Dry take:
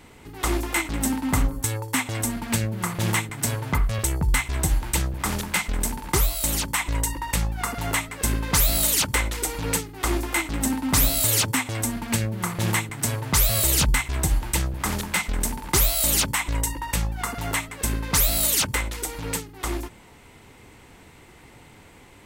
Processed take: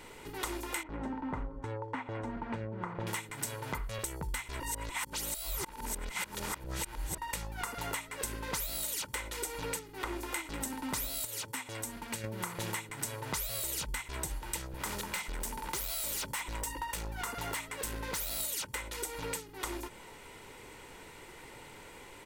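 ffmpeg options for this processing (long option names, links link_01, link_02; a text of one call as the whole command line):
ffmpeg -i in.wav -filter_complex "[0:a]asettb=1/sr,asplit=3[link_01][link_02][link_03];[link_01]atrim=end=0.834[link_04];[link_02]atrim=start=0.83:end=3.07,asetpts=PTS-STARTPTS,afade=type=in:duration=0.004:curve=qsin,afade=type=out:start_time=2.236:duration=0.004:curve=qsin,lowpass=1300[link_05];[link_03]atrim=start=3.066[link_06];[link_04][link_05]acrossfade=duration=0.004:curve1=hsin:curve2=qsin[link_07];[link_07][link_06]acrossfade=duration=0.004:curve1=qsin:curve2=hsin,asettb=1/sr,asplit=3[link_08][link_09][link_10];[link_08]atrim=end=9.794[link_11];[link_09]atrim=start=9.79:end=10.2,asetpts=PTS-STARTPTS,afade=type=in:duration=0.004:curve=qsin,afade=type=out:start_time=0.406:duration=0.004:curve=qsin,acrossover=split=3100[link_12][link_13];[link_13]acompressor=threshold=-42dB:ratio=4:attack=1:release=60[link_14];[link_12][link_14]amix=inputs=2:normalize=0[link_15];[link_10]atrim=start=10.196[link_16];[link_11][link_15]acrossfade=duration=0.004:curve1=hsin:curve2=qsin[link_17];[link_17][link_16]acrossfade=duration=0.004:curve1=qsin:curve2=hsin,asettb=1/sr,asplit=3[link_18][link_19][link_20];[link_18]atrim=end=14.674[link_21];[link_19]atrim=start=14.67:end=18.4,asetpts=PTS-STARTPTS,afade=type=in:duration=0.004:curve=qsin,afade=type=out:start_time=3.726:duration=0.004:curve=qsin,asoftclip=type=hard:threshold=-24dB[link_22];[link_20]atrim=start=18.396[link_23];[link_21][link_22]acrossfade=duration=0.004:curve1=hsin:curve2=qsin[link_24];[link_24][link_23]acrossfade=duration=0.004:curve1=qsin:curve2=hsin,asplit=5[link_25][link_26][link_27][link_28][link_29];[link_25]atrim=end=4.602[link_30];[link_26]atrim=start=4.598:end=7.182,asetpts=PTS-STARTPTS,areverse[link_31];[link_27]atrim=start=7.178:end=11.252[link_32];[link_28]atrim=start=11.248:end=12.242,asetpts=PTS-STARTPTS,volume=-8.5dB[link_33];[link_29]atrim=start=12.238[link_34];[link_30][link_31]acrossfade=duration=0.004:curve1=hsin:curve2=hsin[link_35];[link_35][link_32]acrossfade=duration=0.004:curve1=hsin:curve2=hsin[link_36];[link_36][link_33]acrossfade=duration=0.004:curve1=hsin:curve2=hsin[link_37];[link_37][link_34]acrossfade=duration=0.004:curve1=hsin:curve2=hsin,equalizer=frequency=73:width_type=o:width=2.2:gain=-11,aecho=1:1:2.1:0.34,acompressor=threshold=-35dB:ratio=6" out.wav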